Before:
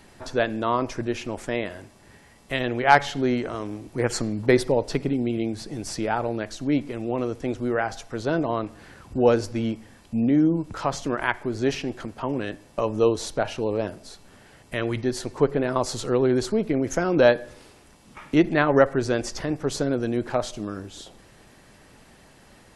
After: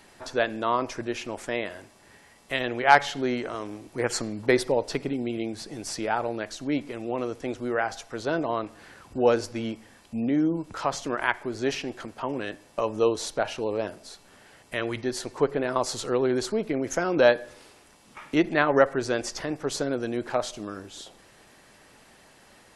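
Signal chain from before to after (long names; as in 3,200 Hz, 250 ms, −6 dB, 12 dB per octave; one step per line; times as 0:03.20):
low-shelf EQ 260 Hz −10 dB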